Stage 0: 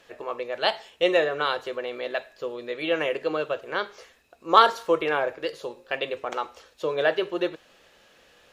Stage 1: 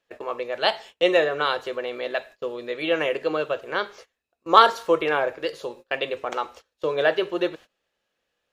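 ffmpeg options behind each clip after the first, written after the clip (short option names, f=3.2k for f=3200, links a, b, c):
-af "agate=range=-23dB:threshold=-44dB:ratio=16:detection=peak,volume=2dB"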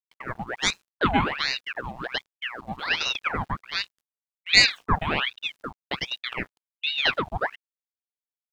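-af "aeval=exprs='val(0)*gte(abs(val(0)),0.0158)':c=same,afwtdn=0.0355,aeval=exprs='val(0)*sin(2*PI*1800*n/s+1800*0.85/1.3*sin(2*PI*1.3*n/s))':c=same"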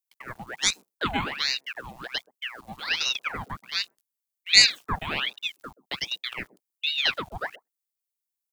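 -filter_complex "[0:a]acrossover=split=190|770[a][b][c];[b]aecho=1:1:127:0.2[d];[c]crystalizer=i=4:c=0[e];[a][d][e]amix=inputs=3:normalize=0,volume=-7dB"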